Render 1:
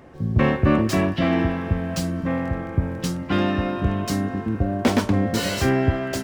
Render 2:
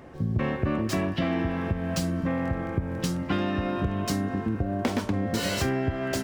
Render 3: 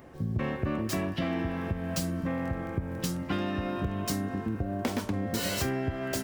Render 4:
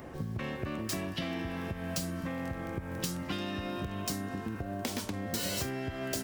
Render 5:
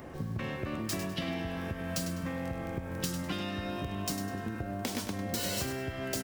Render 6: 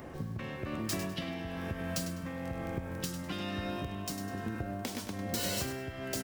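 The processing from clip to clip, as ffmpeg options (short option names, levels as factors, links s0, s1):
-af "acompressor=threshold=0.0708:ratio=6"
-af "highshelf=f=9700:g=11.5,volume=0.631"
-filter_complex "[0:a]acrossover=split=780|3000[s0][s1][s2];[s0]acompressor=threshold=0.00891:ratio=4[s3];[s1]acompressor=threshold=0.00282:ratio=4[s4];[s2]acompressor=threshold=0.01:ratio=4[s5];[s3][s4][s5]amix=inputs=3:normalize=0,volume=1.78"
-af "aecho=1:1:101|202|303|404:0.335|0.111|0.0365|0.012"
-af "tremolo=f=1.1:d=0.37"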